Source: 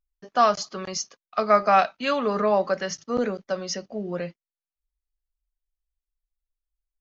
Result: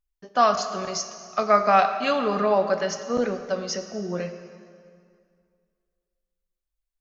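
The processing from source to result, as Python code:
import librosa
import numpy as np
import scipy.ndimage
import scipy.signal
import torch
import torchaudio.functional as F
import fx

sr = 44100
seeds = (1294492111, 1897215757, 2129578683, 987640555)

y = fx.rev_plate(x, sr, seeds[0], rt60_s=2.2, hf_ratio=0.85, predelay_ms=0, drr_db=7.5)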